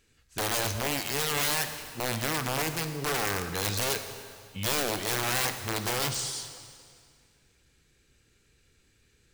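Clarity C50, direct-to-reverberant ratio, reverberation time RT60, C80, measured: 8.5 dB, 8.0 dB, 2.1 s, 9.5 dB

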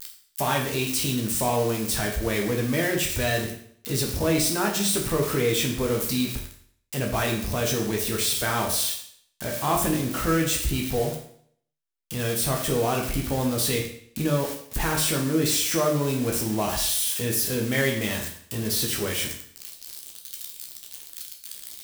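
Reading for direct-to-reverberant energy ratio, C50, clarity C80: −0.5 dB, 7.0 dB, 9.5 dB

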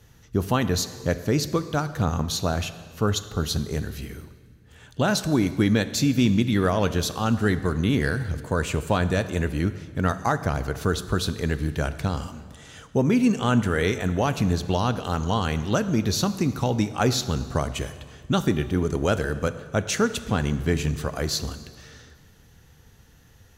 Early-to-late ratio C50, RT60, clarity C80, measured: 13.5 dB, 1.8 s, 14.5 dB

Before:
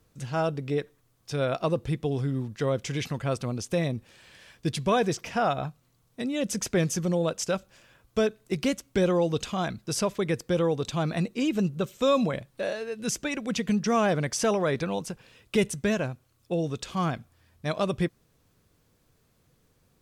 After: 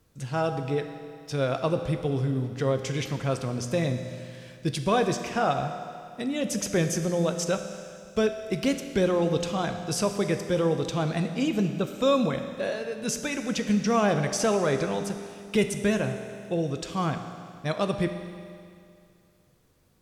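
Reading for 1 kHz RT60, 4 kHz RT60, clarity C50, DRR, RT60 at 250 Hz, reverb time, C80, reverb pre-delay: 2.3 s, 2.3 s, 8.0 dB, 7.0 dB, 2.3 s, 2.3 s, 9.0 dB, 10 ms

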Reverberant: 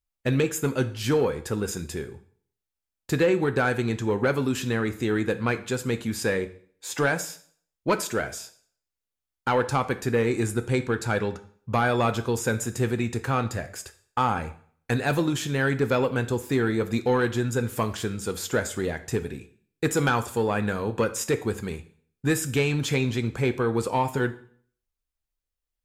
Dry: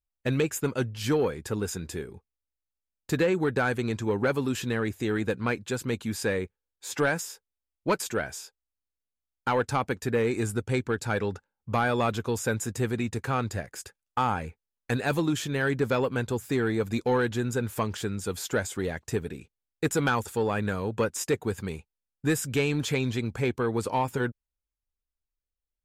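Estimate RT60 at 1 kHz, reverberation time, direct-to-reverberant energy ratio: 0.50 s, 0.50 s, 9.5 dB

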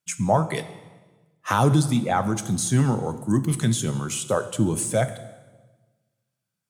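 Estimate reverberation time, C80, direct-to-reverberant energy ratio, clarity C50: 1.3 s, 15.0 dB, 11.0 dB, 13.5 dB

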